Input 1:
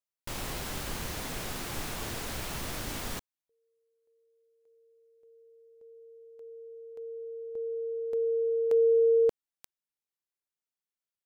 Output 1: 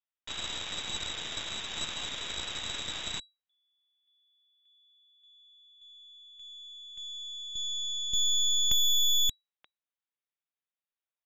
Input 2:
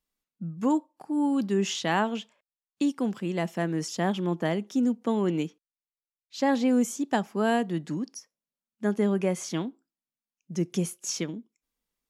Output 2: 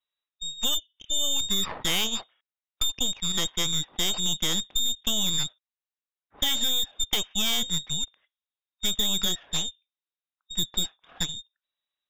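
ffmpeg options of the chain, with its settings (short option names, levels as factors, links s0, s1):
-af "lowpass=f=3300:t=q:w=0.5098,lowpass=f=3300:t=q:w=0.6013,lowpass=f=3300:t=q:w=0.9,lowpass=f=3300:t=q:w=2.563,afreqshift=-3900,aeval=exprs='0.266*(cos(1*acos(clip(val(0)/0.266,-1,1)))-cos(1*PI/2))+0.0237*(cos(3*acos(clip(val(0)/0.266,-1,1)))-cos(3*PI/2))+0.0473*(cos(8*acos(clip(val(0)/0.266,-1,1)))-cos(8*PI/2))':c=same,acompressor=threshold=0.0562:ratio=6:attack=47:release=71:knee=1:detection=rms,volume=1.19"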